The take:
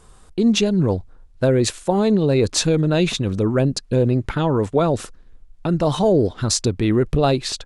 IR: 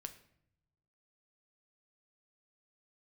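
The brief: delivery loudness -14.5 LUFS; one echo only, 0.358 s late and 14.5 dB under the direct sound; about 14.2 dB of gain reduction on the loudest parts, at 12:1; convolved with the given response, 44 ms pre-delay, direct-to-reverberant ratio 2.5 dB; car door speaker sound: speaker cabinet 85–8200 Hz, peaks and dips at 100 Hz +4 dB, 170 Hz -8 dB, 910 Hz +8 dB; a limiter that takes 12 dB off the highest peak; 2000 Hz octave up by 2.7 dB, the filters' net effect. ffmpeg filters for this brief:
-filter_complex "[0:a]equalizer=f=2k:t=o:g=3.5,acompressor=threshold=-27dB:ratio=12,alimiter=level_in=0.5dB:limit=-24dB:level=0:latency=1,volume=-0.5dB,aecho=1:1:358:0.188,asplit=2[a][b];[1:a]atrim=start_sample=2205,adelay=44[c];[b][c]afir=irnorm=-1:irlink=0,volume=1.5dB[d];[a][d]amix=inputs=2:normalize=0,highpass=85,equalizer=f=100:t=q:w=4:g=4,equalizer=f=170:t=q:w=4:g=-8,equalizer=f=910:t=q:w=4:g=8,lowpass=f=8.2k:w=0.5412,lowpass=f=8.2k:w=1.3066,volume=17.5dB"

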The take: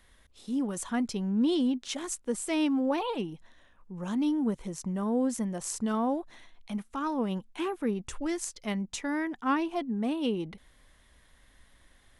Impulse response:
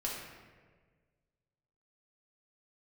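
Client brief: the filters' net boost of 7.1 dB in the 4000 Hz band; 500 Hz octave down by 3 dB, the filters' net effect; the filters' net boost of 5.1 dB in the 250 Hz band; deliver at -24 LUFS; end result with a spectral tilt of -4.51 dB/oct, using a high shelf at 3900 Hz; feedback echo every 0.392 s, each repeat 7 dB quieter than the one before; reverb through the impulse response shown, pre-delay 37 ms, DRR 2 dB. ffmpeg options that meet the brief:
-filter_complex "[0:a]equalizer=f=250:t=o:g=8,equalizer=f=500:t=o:g=-8,highshelf=f=3.9k:g=4.5,equalizer=f=4k:t=o:g=7,aecho=1:1:392|784|1176|1568|1960:0.447|0.201|0.0905|0.0407|0.0183,asplit=2[a][b];[1:a]atrim=start_sample=2205,adelay=37[c];[b][c]afir=irnorm=-1:irlink=0,volume=-5dB[d];[a][d]amix=inputs=2:normalize=0"

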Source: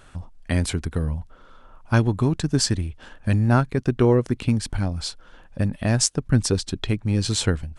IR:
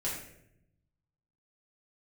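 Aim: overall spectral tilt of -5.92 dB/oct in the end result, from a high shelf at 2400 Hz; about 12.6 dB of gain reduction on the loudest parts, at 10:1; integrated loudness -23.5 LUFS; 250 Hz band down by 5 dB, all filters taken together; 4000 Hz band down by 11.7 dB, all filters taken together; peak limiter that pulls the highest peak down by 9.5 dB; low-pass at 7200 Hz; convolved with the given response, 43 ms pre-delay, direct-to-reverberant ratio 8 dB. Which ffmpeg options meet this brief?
-filter_complex "[0:a]lowpass=7.2k,equalizer=f=250:t=o:g=-6.5,highshelf=f=2.4k:g=-6,equalizer=f=4k:t=o:g=-8.5,acompressor=threshold=-28dB:ratio=10,alimiter=level_in=2dB:limit=-24dB:level=0:latency=1,volume=-2dB,asplit=2[a][b];[1:a]atrim=start_sample=2205,adelay=43[c];[b][c]afir=irnorm=-1:irlink=0,volume=-12dB[d];[a][d]amix=inputs=2:normalize=0,volume=13.5dB"

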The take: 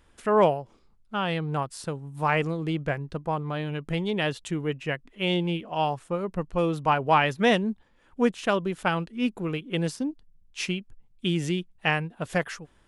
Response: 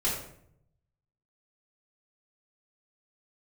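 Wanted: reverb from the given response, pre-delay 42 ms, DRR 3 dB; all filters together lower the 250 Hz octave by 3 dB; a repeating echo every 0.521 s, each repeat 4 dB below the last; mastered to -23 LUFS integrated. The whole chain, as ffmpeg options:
-filter_complex "[0:a]equalizer=f=250:t=o:g=-4.5,aecho=1:1:521|1042|1563|2084|2605|3126|3647|4168|4689:0.631|0.398|0.25|0.158|0.0994|0.0626|0.0394|0.0249|0.0157,asplit=2[a][b];[1:a]atrim=start_sample=2205,adelay=42[c];[b][c]afir=irnorm=-1:irlink=0,volume=-11.5dB[d];[a][d]amix=inputs=2:normalize=0,volume=1dB"

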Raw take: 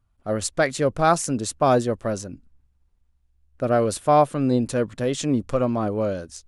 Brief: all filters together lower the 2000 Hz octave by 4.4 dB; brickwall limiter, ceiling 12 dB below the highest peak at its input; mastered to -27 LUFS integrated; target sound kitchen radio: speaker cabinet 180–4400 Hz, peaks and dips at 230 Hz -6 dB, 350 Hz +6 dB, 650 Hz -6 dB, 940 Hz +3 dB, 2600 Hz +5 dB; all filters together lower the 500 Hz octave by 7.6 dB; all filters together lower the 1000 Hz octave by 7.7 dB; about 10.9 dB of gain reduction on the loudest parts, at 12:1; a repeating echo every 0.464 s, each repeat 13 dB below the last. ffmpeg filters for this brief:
-af "equalizer=f=500:t=o:g=-6,equalizer=f=1k:t=o:g=-6.5,equalizer=f=2k:t=o:g=-4,acompressor=threshold=-29dB:ratio=12,alimiter=level_in=3.5dB:limit=-24dB:level=0:latency=1,volume=-3.5dB,highpass=180,equalizer=f=230:t=q:w=4:g=-6,equalizer=f=350:t=q:w=4:g=6,equalizer=f=650:t=q:w=4:g=-6,equalizer=f=940:t=q:w=4:g=3,equalizer=f=2.6k:t=q:w=4:g=5,lowpass=f=4.4k:w=0.5412,lowpass=f=4.4k:w=1.3066,aecho=1:1:464|928|1392:0.224|0.0493|0.0108,volume=13.5dB"

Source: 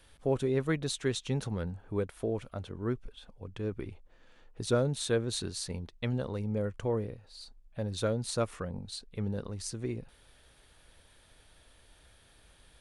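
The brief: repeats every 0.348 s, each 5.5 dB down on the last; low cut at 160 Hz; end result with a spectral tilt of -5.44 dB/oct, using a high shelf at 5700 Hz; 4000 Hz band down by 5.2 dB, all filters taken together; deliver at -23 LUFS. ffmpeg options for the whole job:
-af "highpass=160,equalizer=f=4k:t=o:g=-4.5,highshelf=f=5.7k:g=-3.5,aecho=1:1:348|696|1044|1392|1740|2088|2436:0.531|0.281|0.149|0.079|0.0419|0.0222|0.0118,volume=12dB"

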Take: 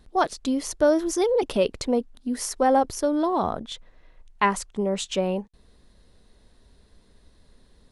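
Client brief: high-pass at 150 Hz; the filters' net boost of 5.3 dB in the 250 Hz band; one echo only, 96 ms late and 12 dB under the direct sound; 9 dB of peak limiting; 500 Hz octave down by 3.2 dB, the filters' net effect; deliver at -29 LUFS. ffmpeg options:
-af "highpass=150,equalizer=f=250:t=o:g=9,equalizer=f=500:t=o:g=-6.5,alimiter=limit=-16dB:level=0:latency=1,aecho=1:1:96:0.251,volume=-3dB"

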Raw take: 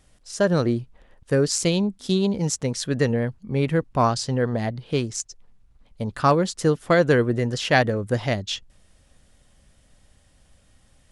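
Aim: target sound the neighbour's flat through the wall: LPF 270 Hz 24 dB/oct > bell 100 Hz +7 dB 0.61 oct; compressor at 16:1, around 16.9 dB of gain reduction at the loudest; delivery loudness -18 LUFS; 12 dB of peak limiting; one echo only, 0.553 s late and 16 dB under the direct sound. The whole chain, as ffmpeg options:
-af "acompressor=threshold=-30dB:ratio=16,alimiter=level_in=4.5dB:limit=-24dB:level=0:latency=1,volume=-4.5dB,lowpass=f=270:w=0.5412,lowpass=f=270:w=1.3066,equalizer=f=100:t=o:w=0.61:g=7,aecho=1:1:553:0.158,volume=22dB"

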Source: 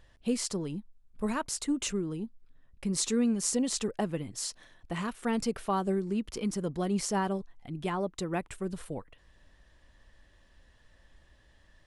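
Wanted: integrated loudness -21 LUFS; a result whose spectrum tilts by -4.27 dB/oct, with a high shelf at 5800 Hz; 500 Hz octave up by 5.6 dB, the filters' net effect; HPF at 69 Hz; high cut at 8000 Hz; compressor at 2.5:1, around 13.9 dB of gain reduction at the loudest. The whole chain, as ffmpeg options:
-af "highpass=69,lowpass=8k,equalizer=f=500:t=o:g=7,highshelf=f=5.8k:g=3.5,acompressor=threshold=-42dB:ratio=2.5,volume=20dB"

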